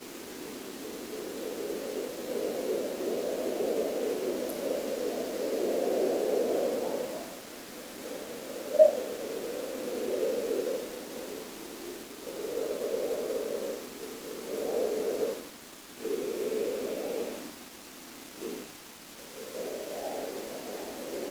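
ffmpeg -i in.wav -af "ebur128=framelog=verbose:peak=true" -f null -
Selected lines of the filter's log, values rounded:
Integrated loudness:
  I:         -33.2 LUFS
  Threshold: -43.5 LUFS
Loudness range:
  LRA:         8.3 LU
  Threshold: -53.1 LUFS
  LRA low:   -38.3 LUFS
  LRA high:  -30.0 LUFS
True peak:
  Peak:       -7.7 dBFS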